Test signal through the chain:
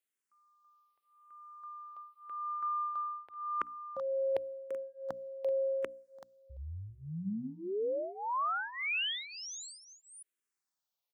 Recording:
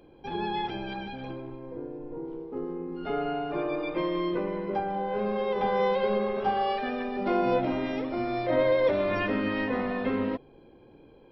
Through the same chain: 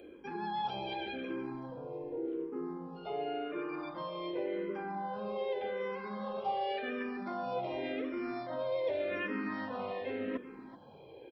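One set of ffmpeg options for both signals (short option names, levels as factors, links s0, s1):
-filter_complex "[0:a]areverse,acompressor=threshold=0.0126:ratio=5,areverse,highpass=f=220:p=1,bandreject=f=60:t=h:w=6,bandreject=f=120:t=h:w=6,bandreject=f=180:t=h:w=6,bandreject=f=240:t=h:w=6,bandreject=f=300:t=h:w=6,asplit=2[s0][s1];[s1]aecho=0:1:382:0.188[s2];[s0][s2]amix=inputs=2:normalize=0,acrossover=split=3600[s3][s4];[s4]acompressor=threshold=0.00178:ratio=4:attack=1:release=60[s5];[s3][s5]amix=inputs=2:normalize=0,asplit=2[s6][s7];[s7]afreqshift=-0.88[s8];[s6][s8]amix=inputs=2:normalize=1,volume=2.11"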